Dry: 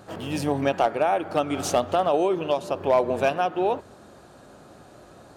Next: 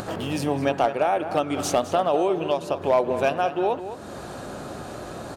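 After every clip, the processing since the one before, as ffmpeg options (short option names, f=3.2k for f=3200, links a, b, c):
-filter_complex "[0:a]acompressor=mode=upward:threshold=-23dB:ratio=2.5,asplit=2[a][b];[b]adelay=209.9,volume=-11dB,highshelf=f=4k:g=-4.72[c];[a][c]amix=inputs=2:normalize=0"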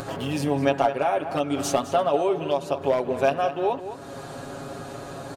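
-af "aecho=1:1:7.3:0.68,volume=-2.5dB"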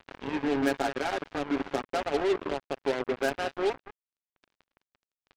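-af "highpass=f=230:w=0.5412,highpass=f=230:w=1.3066,equalizer=f=270:t=q:w=4:g=5,equalizer=f=400:t=q:w=4:g=4,equalizer=f=610:t=q:w=4:g=-8,equalizer=f=1.1k:t=q:w=4:g=-10,equalizer=f=1.6k:t=q:w=4:g=8,lowpass=f=2.3k:w=0.5412,lowpass=f=2.3k:w=1.3066,acrusher=bits=3:mix=0:aa=0.5,volume=-5.5dB"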